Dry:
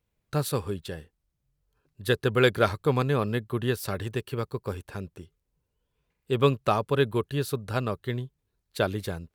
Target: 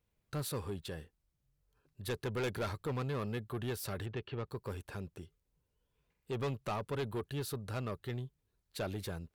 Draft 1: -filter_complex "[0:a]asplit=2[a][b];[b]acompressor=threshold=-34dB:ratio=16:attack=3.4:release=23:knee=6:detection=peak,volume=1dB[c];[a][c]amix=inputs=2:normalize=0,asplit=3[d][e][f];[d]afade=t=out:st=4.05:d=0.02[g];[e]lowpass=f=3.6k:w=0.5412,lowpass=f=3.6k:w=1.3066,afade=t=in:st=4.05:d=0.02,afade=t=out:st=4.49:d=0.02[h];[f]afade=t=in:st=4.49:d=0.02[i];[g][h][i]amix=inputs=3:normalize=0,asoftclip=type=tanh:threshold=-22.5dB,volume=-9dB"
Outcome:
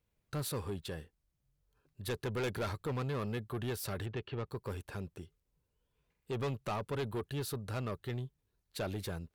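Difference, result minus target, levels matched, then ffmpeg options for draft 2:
compressor: peak gain reduction -5.5 dB
-filter_complex "[0:a]asplit=2[a][b];[b]acompressor=threshold=-40dB:ratio=16:attack=3.4:release=23:knee=6:detection=peak,volume=1dB[c];[a][c]amix=inputs=2:normalize=0,asplit=3[d][e][f];[d]afade=t=out:st=4.05:d=0.02[g];[e]lowpass=f=3.6k:w=0.5412,lowpass=f=3.6k:w=1.3066,afade=t=in:st=4.05:d=0.02,afade=t=out:st=4.49:d=0.02[h];[f]afade=t=in:st=4.49:d=0.02[i];[g][h][i]amix=inputs=3:normalize=0,asoftclip=type=tanh:threshold=-22.5dB,volume=-9dB"

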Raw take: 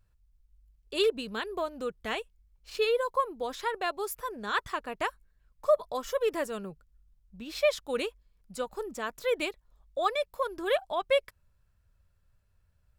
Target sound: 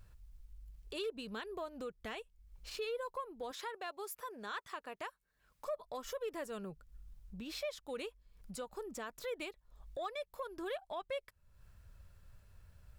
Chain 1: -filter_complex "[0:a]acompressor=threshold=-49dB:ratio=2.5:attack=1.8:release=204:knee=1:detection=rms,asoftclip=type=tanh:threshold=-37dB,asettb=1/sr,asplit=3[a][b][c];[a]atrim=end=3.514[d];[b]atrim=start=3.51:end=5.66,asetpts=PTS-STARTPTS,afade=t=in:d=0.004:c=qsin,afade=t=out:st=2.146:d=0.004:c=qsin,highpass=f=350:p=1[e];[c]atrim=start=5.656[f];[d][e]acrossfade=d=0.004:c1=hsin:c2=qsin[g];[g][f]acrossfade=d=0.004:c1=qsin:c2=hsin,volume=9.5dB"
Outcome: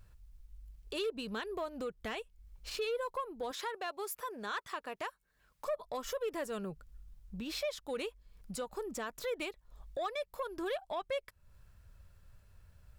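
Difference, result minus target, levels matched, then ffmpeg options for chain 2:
compressor: peak gain reduction -5 dB
-filter_complex "[0:a]acompressor=threshold=-57dB:ratio=2.5:attack=1.8:release=204:knee=1:detection=rms,asoftclip=type=tanh:threshold=-37dB,asettb=1/sr,asplit=3[a][b][c];[a]atrim=end=3.514[d];[b]atrim=start=3.51:end=5.66,asetpts=PTS-STARTPTS,afade=t=in:d=0.004:c=qsin,afade=t=out:st=2.146:d=0.004:c=qsin,highpass=f=350:p=1[e];[c]atrim=start=5.656[f];[d][e]acrossfade=d=0.004:c1=hsin:c2=qsin[g];[g][f]acrossfade=d=0.004:c1=qsin:c2=hsin,volume=9.5dB"

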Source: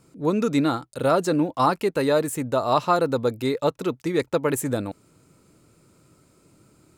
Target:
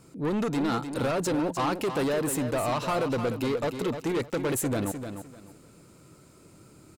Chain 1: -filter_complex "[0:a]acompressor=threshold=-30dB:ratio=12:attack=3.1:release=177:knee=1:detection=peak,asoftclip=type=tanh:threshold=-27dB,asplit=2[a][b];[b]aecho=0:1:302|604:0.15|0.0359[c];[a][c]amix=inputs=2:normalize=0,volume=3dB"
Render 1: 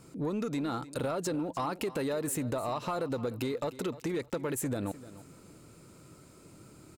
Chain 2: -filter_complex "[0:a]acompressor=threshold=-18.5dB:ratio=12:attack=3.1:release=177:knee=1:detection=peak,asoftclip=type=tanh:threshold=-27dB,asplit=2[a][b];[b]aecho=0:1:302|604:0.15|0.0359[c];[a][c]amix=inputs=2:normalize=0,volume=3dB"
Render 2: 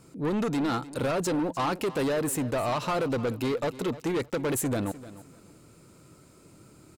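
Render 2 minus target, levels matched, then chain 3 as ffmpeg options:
echo-to-direct -8 dB
-filter_complex "[0:a]acompressor=threshold=-18.5dB:ratio=12:attack=3.1:release=177:knee=1:detection=peak,asoftclip=type=tanh:threshold=-27dB,asplit=2[a][b];[b]aecho=0:1:302|604|906:0.376|0.0902|0.0216[c];[a][c]amix=inputs=2:normalize=0,volume=3dB"

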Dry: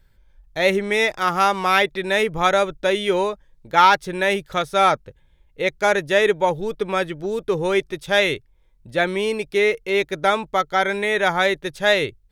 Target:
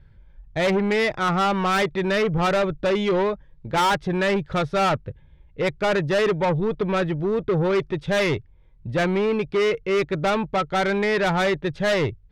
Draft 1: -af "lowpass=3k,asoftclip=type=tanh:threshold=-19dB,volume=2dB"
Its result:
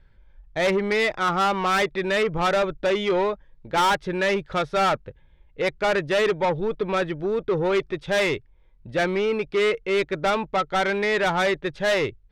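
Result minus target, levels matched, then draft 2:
125 Hz band -6.0 dB
-af "lowpass=3k,equalizer=f=110:w=0.58:g=10.5,asoftclip=type=tanh:threshold=-19dB,volume=2dB"

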